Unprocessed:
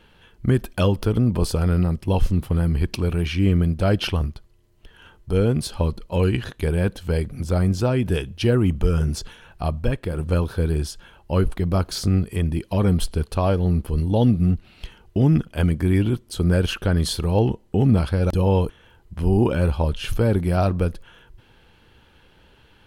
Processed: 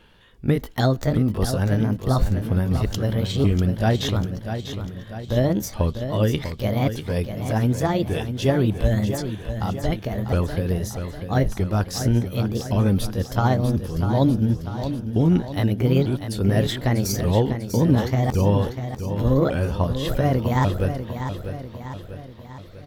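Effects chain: sawtooth pitch modulation +6 st, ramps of 1147 ms; feedback delay 645 ms, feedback 52%, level -9 dB

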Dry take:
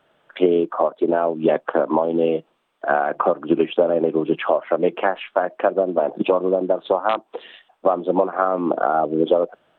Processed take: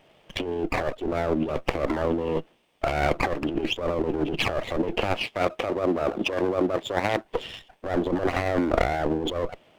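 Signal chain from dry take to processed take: comb filter that takes the minimum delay 0.34 ms; 5.23–7.25 s: high-pass 160 Hz 6 dB/octave; compressor with a negative ratio -25 dBFS, ratio -1

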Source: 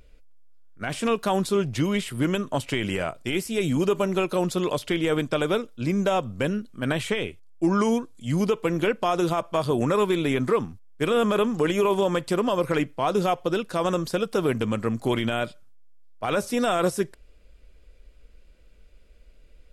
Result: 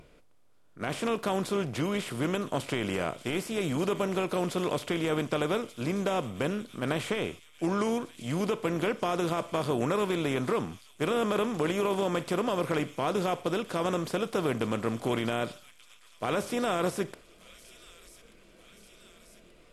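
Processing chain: spectral levelling over time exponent 0.6; spectral noise reduction 8 dB; feedback echo behind a high-pass 1183 ms, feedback 63%, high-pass 3.2 kHz, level -12 dB; trim -9 dB

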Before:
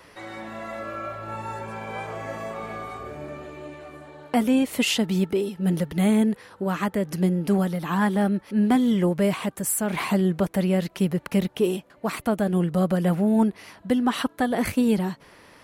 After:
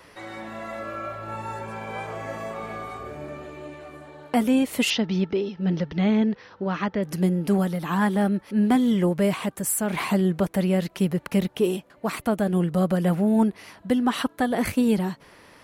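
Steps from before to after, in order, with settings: 4.90–7.03 s: elliptic low-pass 5.8 kHz, stop band 40 dB

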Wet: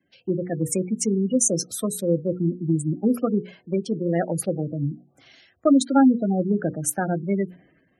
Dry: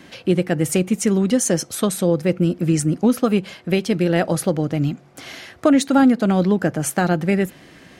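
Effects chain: spectral gate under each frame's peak -15 dB strong; hum notches 60/120/180/240/300/360/420/480 Hz; three bands expanded up and down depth 70%; trim -4 dB

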